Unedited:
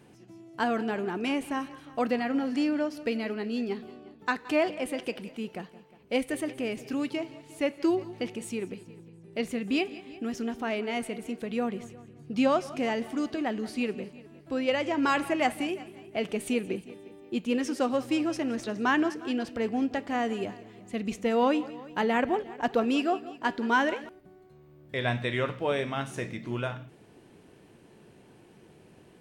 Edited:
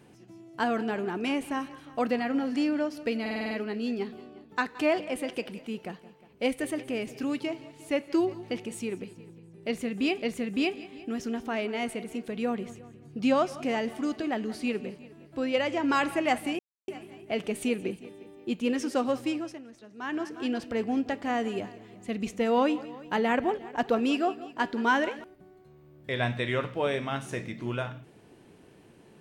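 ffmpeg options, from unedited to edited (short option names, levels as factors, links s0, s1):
-filter_complex "[0:a]asplit=11[s0][s1][s2][s3][s4][s5][s6][s7][s8][s9][s10];[s0]atrim=end=3.262[s11];[s1]atrim=start=3.208:end=3.262[s12];[s2]atrim=start=3.208:end=3.262[s13];[s3]atrim=start=3.208:end=3.262[s14];[s4]atrim=start=3.208:end=3.262[s15];[s5]atrim=start=3.208:end=3.262[s16];[s6]atrim=start=3.208:end=9.922[s17];[s7]atrim=start=9.358:end=15.73,asetpts=PTS-STARTPTS,afade=t=out:st=6.368:d=0.004:c=hsin,apad=pad_dur=0.29[s18];[s8]atrim=start=15.73:end=18.48,asetpts=PTS-STARTPTS,afade=t=in:d=0.004:c=hsin,afade=t=out:st=2.27:d=0.48:silence=0.141254[s19];[s9]atrim=start=18.48:end=18.82,asetpts=PTS-STARTPTS,volume=0.141[s20];[s10]atrim=start=18.82,asetpts=PTS-STARTPTS,afade=t=in:d=0.48:silence=0.141254[s21];[s11][s12]acrossfade=d=0.004:c1=hsin:c2=hsin[s22];[s22][s13]acrossfade=d=0.004:c1=hsin:c2=hsin[s23];[s23][s14]acrossfade=d=0.004:c1=hsin:c2=hsin[s24];[s24][s15]acrossfade=d=0.004:c1=hsin:c2=hsin[s25];[s25][s16]acrossfade=d=0.004:c1=hsin:c2=hsin[s26];[s26][s17]acrossfade=d=0.004:c1=hsin:c2=hsin[s27];[s18][s19][s20][s21]concat=n=4:v=0:a=1[s28];[s27][s28]acrossfade=d=0.004:c1=hsin:c2=hsin"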